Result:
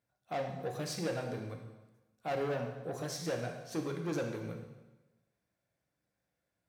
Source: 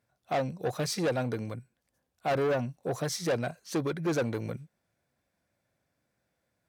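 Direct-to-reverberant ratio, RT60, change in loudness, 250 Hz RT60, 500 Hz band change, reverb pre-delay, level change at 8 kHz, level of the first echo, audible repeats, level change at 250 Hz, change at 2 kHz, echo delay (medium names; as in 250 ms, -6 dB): 2.5 dB, 1.1 s, -6.5 dB, 1.2 s, -6.5 dB, 4 ms, -6.5 dB, no echo, no echo, -6.0 dB, -6.5 dB, no echo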